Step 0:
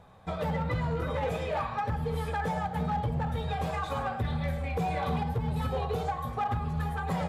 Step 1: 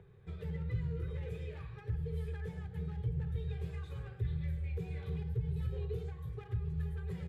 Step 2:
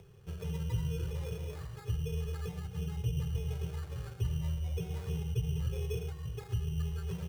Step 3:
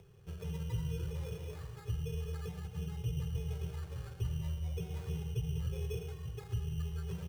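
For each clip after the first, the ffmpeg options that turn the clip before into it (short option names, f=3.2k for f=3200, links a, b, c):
-filter_complex "[0:a]firequalizer=gain_entry='entry(140,0);entry(240,-26);entry(390,0);entry(620,-29);entry(1100,-24);entry(1700,-13);entry(2400,-12);entry(5600,-16);entry(9200,-14)':delay=0.05:min_phase=1,acrossover=split=130|2600[a][b][c];[b]acompressor=mode=upward:threshold=-50dB:ratio=2.5[d];[a][d][c]amix=inputs=3:normalize=0,volume=-3dB"
-af "acrusher=samples=15:mix=1:aa=0.000001,volume=2.5dB"
-af "aecho=1:1:193:0.251,volume=-3dB"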